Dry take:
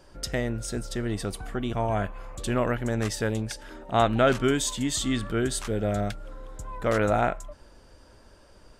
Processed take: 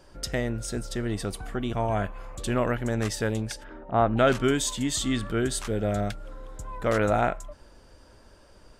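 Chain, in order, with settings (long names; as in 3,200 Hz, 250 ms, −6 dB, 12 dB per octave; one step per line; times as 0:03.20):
0:03.63–0:04.16: low-pass filter 2,200 Hz → 1,200 Hz 12 dB per octave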